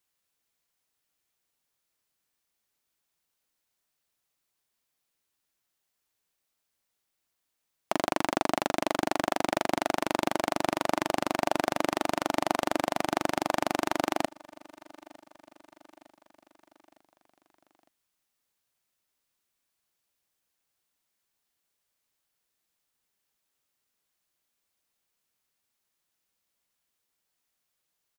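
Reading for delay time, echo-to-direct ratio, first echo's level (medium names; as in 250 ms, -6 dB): 907 ms, -22.0 dB, -23.5 dB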